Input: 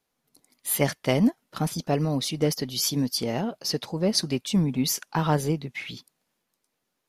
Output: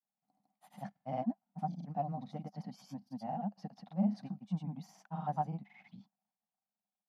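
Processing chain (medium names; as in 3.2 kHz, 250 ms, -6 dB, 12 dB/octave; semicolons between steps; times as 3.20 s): word length cut 12-bit, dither none; granulator, pitch spread up and down by 0 st; two resonant band-passes 390 Hz, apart 1.9 oct; trim -1 dB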